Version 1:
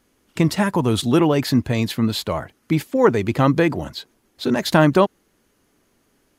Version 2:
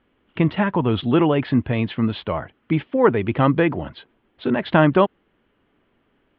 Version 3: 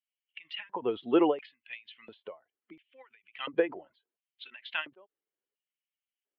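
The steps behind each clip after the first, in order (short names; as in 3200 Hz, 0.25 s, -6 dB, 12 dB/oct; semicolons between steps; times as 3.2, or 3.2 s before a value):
elliptic low-pass 3200 Hz, stop band 60 dB
per-bin expansion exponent 1.5; LFO high-pass square 0.72 Hz 450–2600 Hz; ending taper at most 240 dB/s; gain -4.5 dB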